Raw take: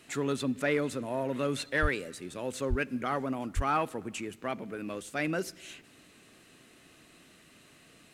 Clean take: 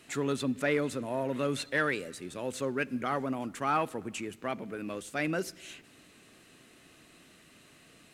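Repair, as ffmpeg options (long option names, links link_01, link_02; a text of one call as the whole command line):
ffmpeg -i in.wav -filter_complex "[0:a]asplit=3[link_01][link_02][link_03];[link_01]afade=type=out:start_time=1.81:duration=0.02[link_04];[link_02]highpass=frequency=140:width=0.5412,highpass=frequency=140:width=1.3066,afade=type=in:start_time=1.81:duration=0.02,afade=type=out:start_time=1.93:duration=0.02[link_05];[link_03]afade=type=in:start_time=1.93:duration=0.02[link_06];[link_04][link_05][link_06]amix=inputs=3:normalize=0,asplit=3[link_07][link_08][link_09];[link_07]afade=type=out:start_time=2.69:duration=0.02[link_10];[link_08]highpass=frequency=140:width=0.5412,highpass=frequency=140:width=1.3066,afade=type=in:start_time=2.69:duration=0.02,afade=type=out:start_time=2.81:duration=0.02[link_11];[link_09]afade=type=in:start_time=2.81:duration=0.02[link_12];[link_10][link_11][link_12]amix=inputs=3:normalize=0,asplit=3[link_13][link_14][link_15];[link_13]afade=type=out:start_time=3.55:duration=0.02[link_16];[link_14]highpass=frequency=140:width=0.5412,highpass=frequency=140:width=1.3066,afade=type=in:start_time=3.55:duration=0.02,afade=type=out:start_time=3.67:duration=0.02[link_17];[link_15]afade=type=in:start_time=3.67:duration=0.02[link_18];[link_16][link_17][link_18]amix=inputs=3:normalize=0" out.wav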